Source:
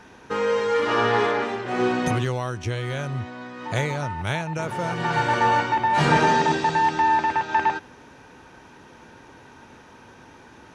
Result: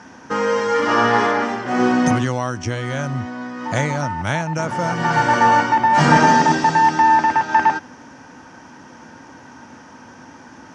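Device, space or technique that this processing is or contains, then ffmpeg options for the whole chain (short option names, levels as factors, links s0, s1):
car door speaker: -af "highpass=97,equalizer=f=120:t=q:w=4:g=-3,equalizer=f=260:t=q:w=4:g=5,equalizer=f=410:t=q:w=4:g=-9,equalizer=f=2500:t=q:w=4:g=-6,equalizer=f=3800:t=q:w=4:g=-9,equalizer=f=5500:t=q:w=4:g=5,lowpass=f=8400:w=0.5412,lowpass=f=8400:w=1.3066,volume=2.11"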